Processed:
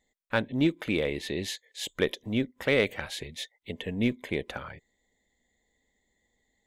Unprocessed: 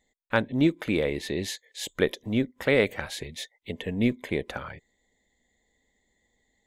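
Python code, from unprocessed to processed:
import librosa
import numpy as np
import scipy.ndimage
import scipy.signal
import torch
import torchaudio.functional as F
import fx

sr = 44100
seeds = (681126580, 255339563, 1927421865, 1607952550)

p1 = fx.dynamic_eq(x, sr, hz=3000.0, q=1.8, threshold_db=-44.0, ratio=4.0, max_db=5)
p2 = np.clip(p1, -10.0 ** (-14.0 / 20.0), 10.0 ** (-14.0 / 20.0))
p3 = p1 + (p2 * librosa.db_to_amplitude(-5.0))
y = p3 * librosa.db_to_amplitude(-6.5)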